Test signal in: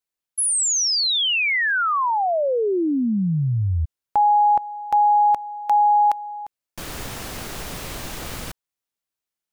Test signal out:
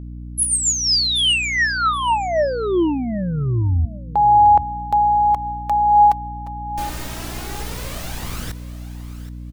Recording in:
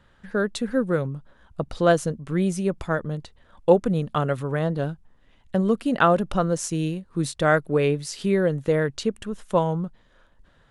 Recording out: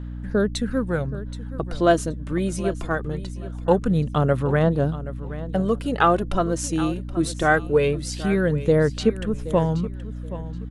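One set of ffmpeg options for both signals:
-af "aphaser=in_gain=1:out_gain=1:delay=3.3:decay=0.46:speed=0.22:type=sinusoidal,aecho=1:1:775|1550:0.178|0.0391,aeval=exprs='val(0)+0.0282*(sin(2*PI*60*n/s)+sin(2*PI*2*60*n/s)/2+sin(2*PI*3*60*n/s)/3+sin(2*PI*4*60*n/s)/4+sin(2*PI*5*60*n/s)/5)':c=same"

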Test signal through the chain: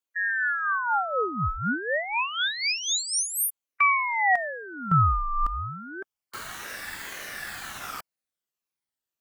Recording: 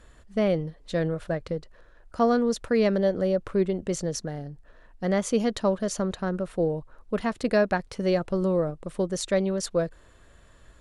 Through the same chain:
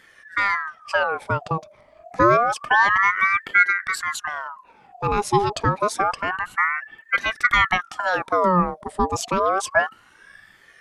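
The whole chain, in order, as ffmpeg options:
-af "afftfilt=real='re*pow(10,11/40*sin(2*PI*(1.1*log(max(b,1)*sr/1024/100)/log(2)-(-1.7)*(pts-256)/sr)))':imag='im*pow(10,11/40*sin(2*PI*(1.1*log(max(b,1)*sr/1024/100)/log(2)-(-1.7)*(pts-256)/sr)))':win_size=1024:overlap=0.75,equalizer=f=240:t=o:w=0.99:g=3.5,aeval=exprs='val(0)*sin(2*PI*1200*n/s+1200*0.5/0.28*sin(2*PI*0.28*n/s))':c=same,volume=4.5dB"

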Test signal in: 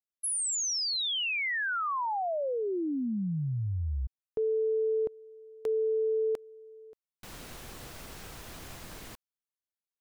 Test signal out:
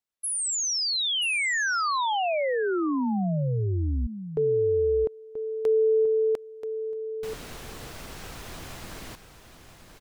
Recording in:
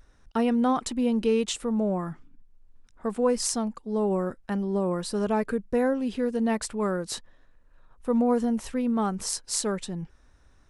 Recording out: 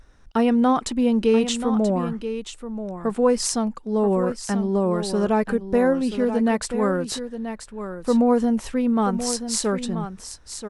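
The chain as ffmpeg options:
-af "highshelf=f=9.4k:g=-5.5,aecho=1:1:982:0.316,volume=5dB"

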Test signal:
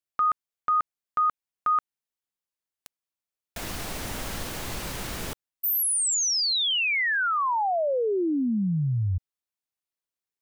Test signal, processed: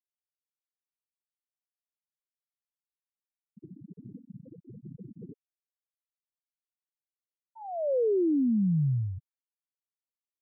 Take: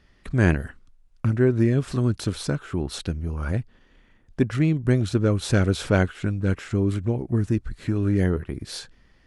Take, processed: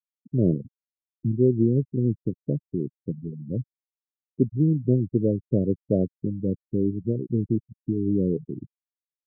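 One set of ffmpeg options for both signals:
-af "asuperpass=centerf=260:order=8:qfactor=0.56,afftfilt=real='re*gte(hypot(re,im),0.0708)':imag='im*gte(hypot(re,im),0.0708)':win_size=1024:overlap=0.75"

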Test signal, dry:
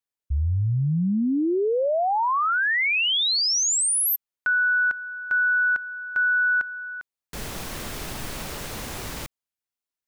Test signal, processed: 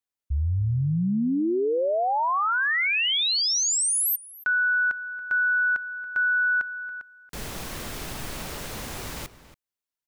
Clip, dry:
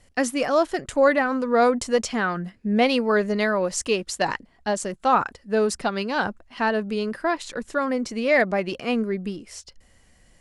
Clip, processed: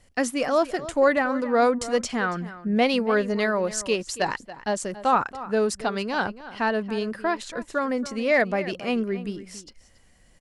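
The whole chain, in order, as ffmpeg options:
-filter_complex "[0:a]asplit=2[a][b];[b]adelay=279.9,volume=-15dB,highshelf=f=4k:g=-6.3[c];[a][c]amix=inputs=2:normalize=0,volume=-1.5dB"

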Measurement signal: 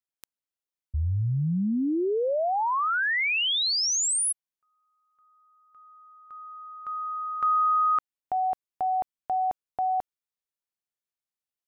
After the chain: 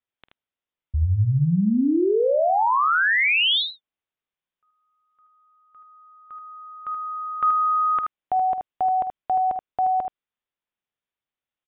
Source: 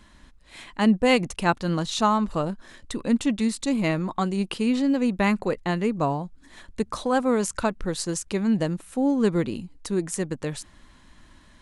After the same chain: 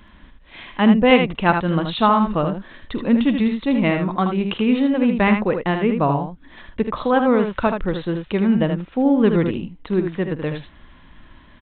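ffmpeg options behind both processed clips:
-af "aresample=8000,aresample=44100,aecho=1:1:48|78:0.158|0.473,volume=5dB"

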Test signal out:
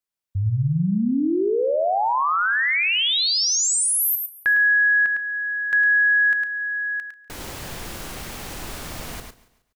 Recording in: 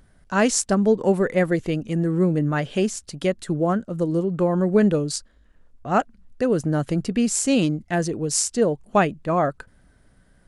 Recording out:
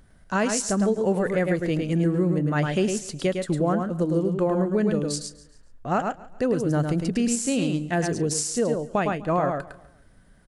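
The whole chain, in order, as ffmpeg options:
-filter_complex "[0:a]asplit=2[a][b];[b]aecho=0:1:106:0.531[c];[a][c]amix=inputs=2:normalize=0,alimiter=limit=-14dB:level=0:latency=1:release=299,asplit=2[d][e];[e]aecho=0:1:140|280|420:0.112|0.0471|0.0198[f];[d][f]amix=inputs=2:normalize=0"

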